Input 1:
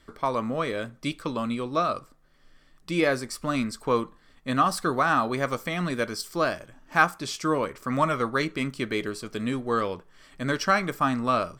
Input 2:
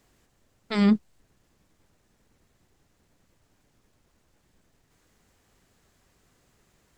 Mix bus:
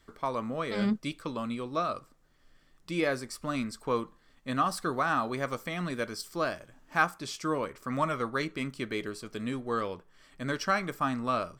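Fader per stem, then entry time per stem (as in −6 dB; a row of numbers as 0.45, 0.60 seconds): −5.5, −8.5 decibels; 0.00, 0.00 seconds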